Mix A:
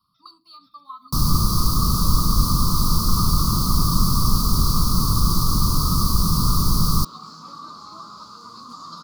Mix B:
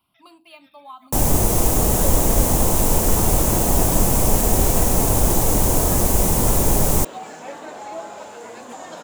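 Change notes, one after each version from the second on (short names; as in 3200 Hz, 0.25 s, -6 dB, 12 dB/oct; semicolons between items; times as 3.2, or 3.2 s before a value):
master: remove EQ curve 100 Hz 0 dB, 170 Hz +4 dB, 540 Hz -21 dB, 800 Hz -23 dB, 1200 Hz +14 dB, 1700 Hz -27 dB, 2900 Hz -19 dB, 4600 Hz +14 dB, 7400 Hz -14 dB, 10000 Hz -6 dB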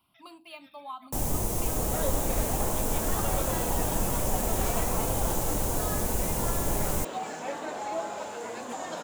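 first sound -11.5 dB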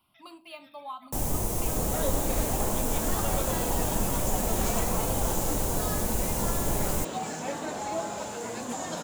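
second sound: add tone controls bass +11 dB, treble +7 dB; reverb: on, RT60 0.35 s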